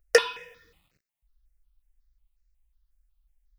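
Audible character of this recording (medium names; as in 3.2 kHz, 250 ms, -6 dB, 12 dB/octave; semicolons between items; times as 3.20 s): notches that jump at a steady rate 5.5 Hz 970–3300 Hz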